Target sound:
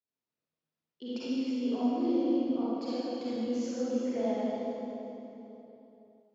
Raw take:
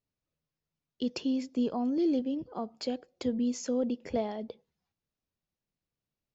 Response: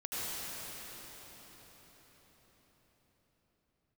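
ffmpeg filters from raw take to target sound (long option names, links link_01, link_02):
-filter_complex "[0:a]highpass=200,lowpass=5500[link_01];[1:a]atrim=start_sample=2205,asetrate=83790,aresample=44100[link_02];[link_01][link_02]afir=irnorm=-1:irlink=0"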